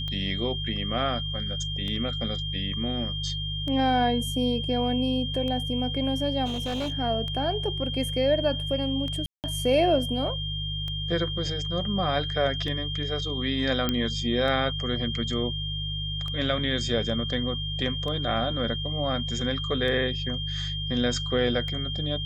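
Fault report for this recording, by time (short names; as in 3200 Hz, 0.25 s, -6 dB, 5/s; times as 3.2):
hum 50 Hz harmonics 3 -33 dBFS
tick 33 1/3 rpm -22 dBFS
tone 3200 Hz -32 dBFS
6.45–6.92 clipped -26 dBFS
9.26–9.44 gap 0.178 s
13.89 pop -11 dBFS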